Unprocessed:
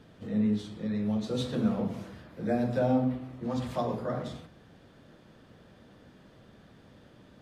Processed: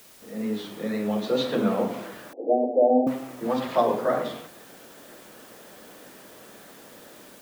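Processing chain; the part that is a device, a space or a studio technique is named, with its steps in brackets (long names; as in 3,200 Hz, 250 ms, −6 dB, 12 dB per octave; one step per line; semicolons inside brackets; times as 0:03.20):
dictaphone (band-pass filter 350–3,600 Hz; automatic gain control gain up to 13.5 dB; tape wow and flutter; white noise bed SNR 25 dB)
0:02.33–0:03.07: Chebyshev band-pass filter 250–820 Hz, order 5
level −2.5 dB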